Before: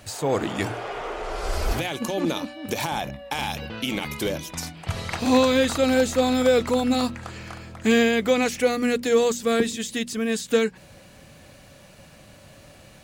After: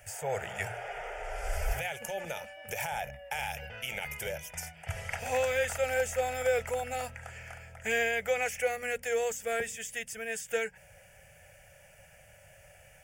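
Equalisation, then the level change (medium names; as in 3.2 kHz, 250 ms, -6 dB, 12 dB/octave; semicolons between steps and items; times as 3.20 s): peaking EQ 260 Hz -13 dB 1.2 oct; bass shelf 480 Hz -3 dB; static phaser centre 1.1 kHz, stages 6; -2.5 dB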